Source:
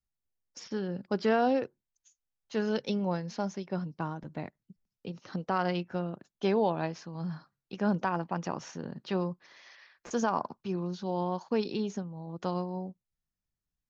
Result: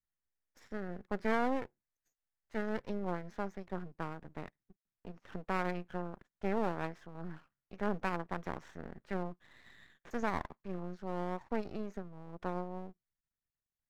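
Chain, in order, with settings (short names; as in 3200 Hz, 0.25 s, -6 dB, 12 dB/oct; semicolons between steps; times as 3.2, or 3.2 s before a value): resonant high shelf 2500 Hz -9.5 dB, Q 3; half-wave rectifier; gain -4.5 dB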